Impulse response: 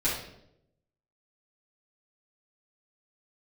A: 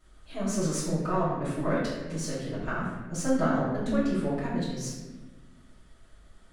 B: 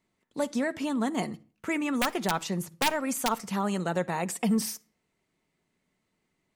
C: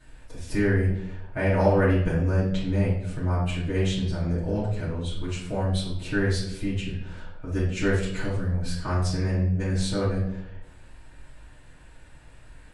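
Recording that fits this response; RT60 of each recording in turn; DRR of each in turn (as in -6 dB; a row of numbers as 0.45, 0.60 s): C; 1.2 s, not exponential, 0.80 s; -12.0, 10.0, -11.0 dB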